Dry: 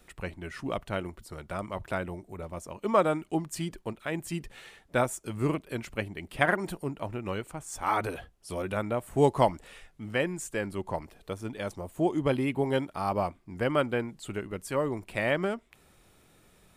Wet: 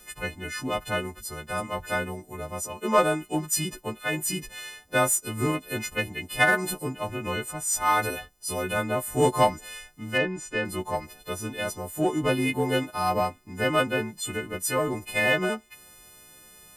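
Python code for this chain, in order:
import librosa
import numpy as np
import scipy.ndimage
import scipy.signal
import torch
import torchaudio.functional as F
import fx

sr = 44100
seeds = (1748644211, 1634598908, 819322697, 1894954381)

p1 = fx.freq_snap(x, sr, grid_st=3)
p2 = fx.lowpass(p1, sr, hz=fx.line((10.17, 2200.0), (10.64, 4300.0)), slope=12, at=(10.17, 10.64), fade=0.02)
p3 = 10.0 ** (-25.0 / 20.0) * np.tanh(p2 / 10.0 ** (-25.0 / 20.0))
y = p2 + F.gain(torch.from_numpy(p3), -6.5).numpy()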